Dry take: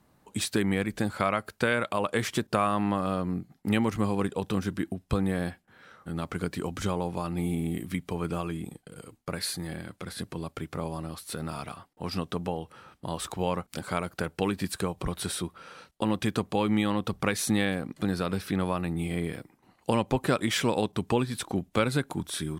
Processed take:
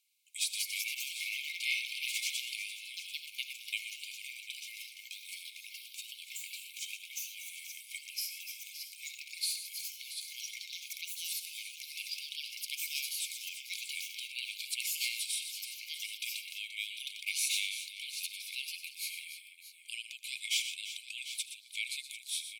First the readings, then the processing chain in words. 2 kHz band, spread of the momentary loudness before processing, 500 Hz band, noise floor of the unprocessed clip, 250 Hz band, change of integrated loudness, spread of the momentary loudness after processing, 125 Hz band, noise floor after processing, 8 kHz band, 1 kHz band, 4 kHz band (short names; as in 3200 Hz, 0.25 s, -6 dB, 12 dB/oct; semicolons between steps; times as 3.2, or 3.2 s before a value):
-3.5 dB, 11 LU, under -40 dB, -67 dBFS, under -40 dB, -7.0 dB, 11 LU, under -40 dB, -54 dBFS, +1.5 dB, under -40 dB, +2.0 dB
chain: on a send: tapped delay 78/121/344/745 ms -18.5/-10.5/-12.5/-13.5 dB; on the sum: echoes that change speed 0.251 s, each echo +3 st, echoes 3; brick-wall FIR high-pass 2100 Hz; gain -1.5 dB